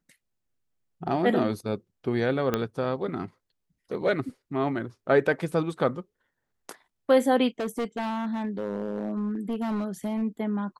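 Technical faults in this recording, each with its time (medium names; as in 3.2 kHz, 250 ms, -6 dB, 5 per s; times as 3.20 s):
2.54 s: pop -11 dBFS
7.60–10.23 s: clipped -25 dBFS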